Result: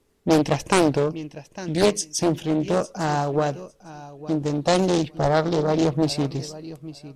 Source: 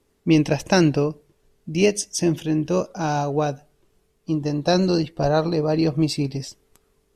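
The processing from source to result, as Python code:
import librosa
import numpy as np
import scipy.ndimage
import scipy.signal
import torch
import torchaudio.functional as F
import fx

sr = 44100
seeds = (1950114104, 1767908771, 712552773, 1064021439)

p1 = x + fx.echo_feedback(x, sr, ms=854, feedback_pct=15, wet_db=-17.0, dry=0)
y = fx.doppler_dist(p1, sr, depth_ms=0.8)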